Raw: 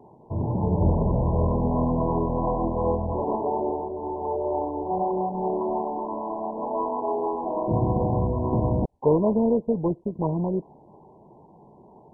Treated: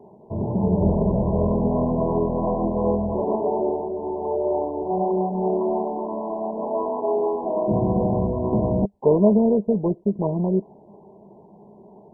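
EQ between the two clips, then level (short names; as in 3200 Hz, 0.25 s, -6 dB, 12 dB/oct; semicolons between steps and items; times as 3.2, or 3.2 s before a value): thirty-one-band EQ 200 Hz +12 dB, 400 Hz +9 dB, 630 Hz +8 dB; -2.5 dB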